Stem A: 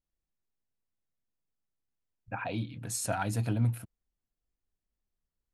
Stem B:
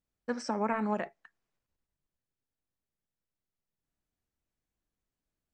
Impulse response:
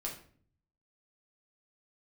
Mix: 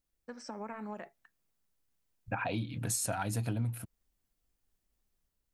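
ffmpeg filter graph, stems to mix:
-filter_complex "[0:a]volume=3dB[link_01];[1:a]acompressor=threshold=-31dB:ratio=4,volume=-10dB[link_02];[link_01][link_02]amix=inputs=2:normalize=0,dynaudnorm=framelen=120:gausssize=7:maxgain=3dB,highshelf=frequency=7000:gain=5,acompressor=threshold=-31dB:ratio=6"

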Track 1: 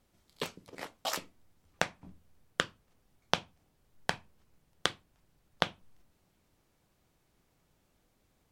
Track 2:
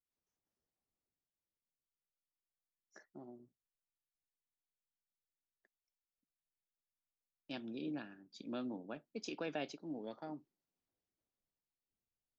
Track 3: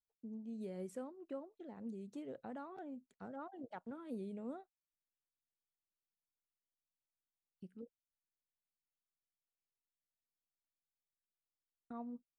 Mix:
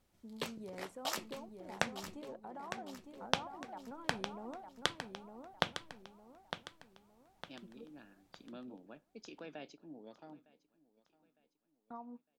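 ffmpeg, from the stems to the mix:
ffmpeg -i stem1.wav -i stem2.wav -i stem3.wav -filter_complex "[0:a]volume=-3.5dB,asplit=3[link_01][link_02][link_03];[link_01]atrim=end=2.17,asetpts=PTS-STARTPTS,afade=type=out:start_time=2.166:duration=0.004:curve=hsin[link_04];[link_02]atrim=start=2.17:end=3.02,asetpts=PTS-STARTPTS,volume=0[link_05];[link_03]atrim=start=3.02,asetpts=PTS-STARTPTS,afade=type=in:duration=0.004:curve=hsin[link_06];[link_04][link_05][link_06]concat=n=3:v=0:a=1,asplit=2[link_07][link_08];[link_08]volume=-9.5dB[link_09];[1:a]volume=-7.5dB,asplit=2[link_10][link_11];[link_11]volume=-22dB[link_12];[2:a]equalizer=frequency=910:width=1.5:gain=13.5,alimiter=level_in=11dB:limit=-24dB:level=0:latency=1:release=114,volume=-11dB,volume=-4dB,asplit=3[link_13][link_14][link_15];[link_14]volume=-5.5dB[link_16];[link_15]apad=whole_len=546317[link_17];[link_10][link_17]sidechaincompress=threshold=-56dB:ratio=8:attack=6:release=300[link_18];[link_09][link_12][link_16]amix=inputs=3:normalize=0,aecho=0:1:907|1814|2721|3628|4535|5442:1|0.41|0.168|0.0689|0.0283|0.0116[link_19];[link_07][link_18][link_13][link_19]amix=inputs=4:normalize=0" out.wav

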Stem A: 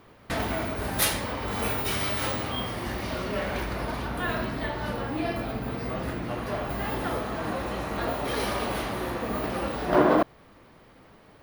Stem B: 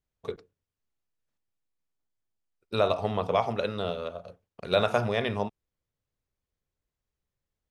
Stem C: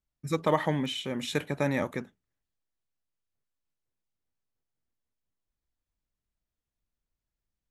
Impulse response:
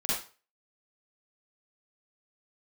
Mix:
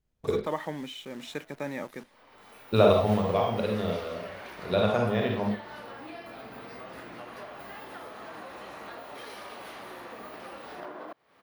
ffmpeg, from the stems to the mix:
-filter_complex "[0:a]highpass=frequency=640:poles=1,acompressor=threshold=-37dB:ratio=8,adelay=900,volume=-2dB[link_01];[1:a]lowshelf=frequency=460:gain=7,volume=-2dB,afade=type=out:start_time=2.73:duration=0.47:silence=0.446684,asplit=2[link_02][link_03];[link_03]volume=-4.5dB[link_04];[2:a]highpass=190,acrusher=bits=8:dc=4:mix=0:aa=0.000001,volume=-6dB,asplit=2[link_05][link_06];[link_06]apad=whole_len=543606[link_07];[link_01][link_07]sidechaincompress=threshold=-51dB:ratio=8:attack=16:release=842[link_08];[3:a]atrim=start_sample=2205[link_09];[link_04][link_09]afir=irnorm=-1:irlink=0[link_10];[link_08][link_02][link_05][link_10]amix=inputs=4:normalize=0,highshelf=frequency=6000:gain=-5"

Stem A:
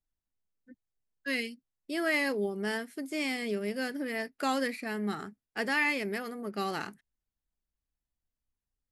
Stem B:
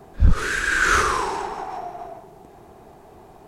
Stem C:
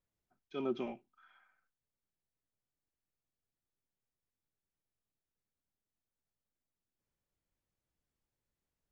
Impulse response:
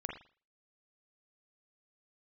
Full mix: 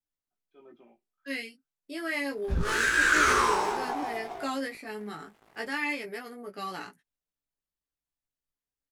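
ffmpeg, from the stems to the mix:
-filter_complex "[0:a]aecho=1:1:6.9:0.41,volume=-0.5dB[link_01];[1:a]alimiter=limit=-12dB:level=0:latency=1:release=32,aeval=exprs='sgn(val(0))*max(abs(val(0))-0.0075,0)':channel_layout=same,adelay=2300,volume=2.5dB[link_02];[2:a]lowpass=frequency=1400:poles=1,lowshelf=frequency=190:gain=-9.5,volume=-10.5dB[link_03];[link_01][link_02][link_03]amix=inputs=3:normalize=0,lowshelf=frequency=140:gain=-8.5,flanger=delay=16.5:depth=2:speed=0.3"

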